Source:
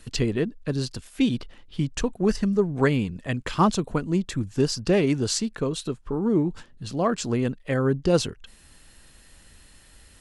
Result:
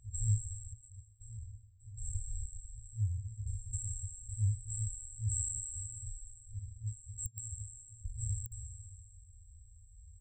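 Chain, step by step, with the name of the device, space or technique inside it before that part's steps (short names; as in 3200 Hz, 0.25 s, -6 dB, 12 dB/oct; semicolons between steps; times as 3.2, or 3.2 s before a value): spectral trails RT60 2.44 s; 0.73–2.06 expander -16 dBFS; call with lost packets (HPF 160 Hz 6 dB/oct; downsampling 16000 Hz; packet loss packets of 60 ms); FFT band-reject 110–7500 Hz; gain +5.5 dB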